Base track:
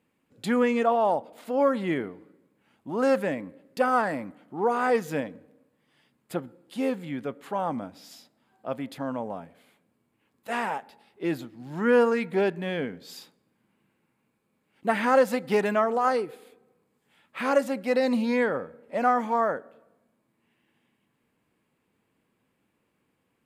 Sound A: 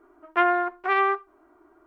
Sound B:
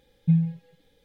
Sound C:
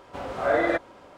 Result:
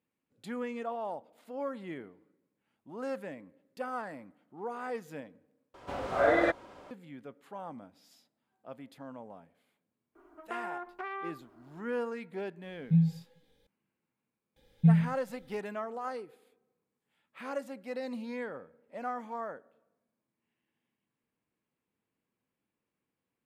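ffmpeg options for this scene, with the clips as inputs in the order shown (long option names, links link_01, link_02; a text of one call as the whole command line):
ffmpeg -i bed.wav -i cue0.wav -i cue1.wav -i cue2.wav -filter_complex "[2:a]asplit=2[link_01][link_02];[0:a]volume=-14dB[link_03];[1:a]acompressor=threshold=-32dB:ratio=6:attack=3.2:release=140:knee=1:detection=peak[link_04];[link_01]flanger=delay=18:depth=5.2:speed=2.6[link_05];[link_02]asubboost=boost=3.5:cutoff=220[link_06];[link_03]asplit=2[link_07][link_08];[link_07]atrim=end=5.744[link_09];[3:a]atrim=end=1.17,asetpts=PTS-STARTPTS,volume=-2.5dB[link_10];[link_08]atrim=start=6.906[link_11];[link_04]atrim=end=1.86,asetpts=PTS-STARTPTS,volume=-3dB,afade=type=in:duration=0.004:curve=hsin,afade=type=out:start_time=1.856:duration=0.004:curve=hsin,adelay=10150[link_12];[link_05]atrim=end=1.04,asetpts=PTS-STARTPTS,volume=-3dB,afade=type=in:duration=0.004:curve=hsin,afade=type=out:start_time=1.036:duration=0.004:curve=hsin,adelay=12630[link_13];[link_06]atrim=end=1.04,asetpts=PTS-STARTPTS,volume=-2.5dB,afade=type=in:duration=0.004:curve=hsin,afade=type=out:start_time=1.036:duration=0.004:curve=hsin,adelay=14560[link_14];[link_09][link_10]acrossfade=duration=0.004:curve1=hsin:curve2=hsin[link_15];[link_15][link_11]acrossfade=duration=0.004:curve1=hsin:curve2=hsin[link_16];[link_16][link_12][link_13][link_14]amix=inputs=4:normalize=0" out.wav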